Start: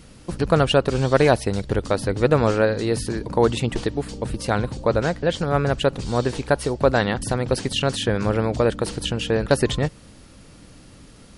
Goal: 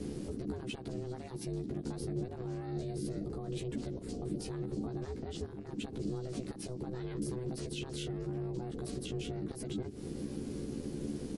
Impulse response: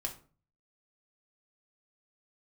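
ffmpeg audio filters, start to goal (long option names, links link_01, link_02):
-filter_complex "[0:a]bass=frequency=250:gain=15,treble=frequency=4000:gain=4,acompressor=threshold=-18dB:ratio=6,alimiter=level_in=1.5dB:limit=-24dB:level=0:latency=1:release=102,volume=-1.5dB,acrossover=split=170|3000[link_01][link_02][link_03];[link_02]acompressor=threshold=-38dB:ratio=6[link_04];[link_01][link_04][link_03]amix=inputs=3:normalize=0,aeval=exprs='val(0)*sin(2*PI*250*n/s)':channel_layout=same,asplit=2[link_05][link_06];[link_06]adelay=14,volume=-2.5dB[link_07];[link_05][link_07]amix=inputs=2:normalize=0,volume=-4.5dB"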